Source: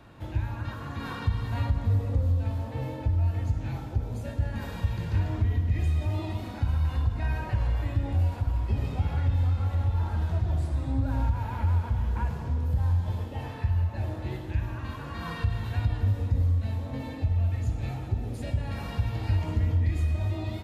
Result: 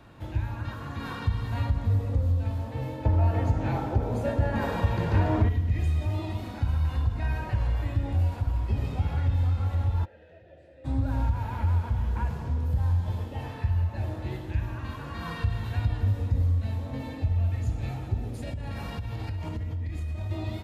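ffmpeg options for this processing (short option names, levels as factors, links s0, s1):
-filter_complex "[0:a]asettb=1/sr,asplit=3[s0][s1][s2];[s0]atrim=end=3.054[s3];[s1]atrim=start=3.05:end=5.49,asetpts=PTS-STARTPTS,afade=t=in:d=0.004:c=qsin,afade=t=out:st=2.436:d=0.004:c=qsin,equalizer=f=640:w=0.33:g=12.5[s4];[s2]atrim=start=5.486[s5];[s3][s4]acrossfade=d=0.004:c1=hsin:c2=qsin[s6];[s6][s5]acrossfade=d=0.004:c1=qsin:c2=hsin,asplit=3[s7][s8][s9];[s7]afade=t=out:st=10.04:d=0.02[s10];[s8]asplit=3[s11][s12][s13];[s11]bandpass=f=530:t=q:w=8,volume=1[s14];[s12]bandpass=f=1840:t=q:w=8,volume=0.501[s15];[s13]bandpass=f=2480:t=q:w=8,volume=0.355[s16];[s14][s15][s16]amix=inputs=3:normalize=0,afade=t=in:st=10.04:d=0.02,afade=t=out:st=10.84:d=0.02[s17];[s9]afade=t=in:st=10.84:d=0.02[s18];[s10][s17][s18]amix=inputs=3:normalize=0,asettb=1/sr,asplit=3[s19][s20][s21];[s19]atrim=end=18.274[s22];[s20]atrim=start=18.27:end=20.31,asetpts=PTS-STARTPTS,afade=t=in:d=0.004:c=qsin,afade=t=out:st=2.036:d=0.004:c=qsin,acompressor=threshold=0.0355:ratio=6:attack=3.2:release=140:knee=1:detection=peak[s23];[s21]atrim=start=20.306[s24];[s22][s23]acrossfade=d=0.004:c1=hsin:c2=qsin[s25];[s25][s24]acrossfade=d=0.004:c1=qsin:c2=hsin"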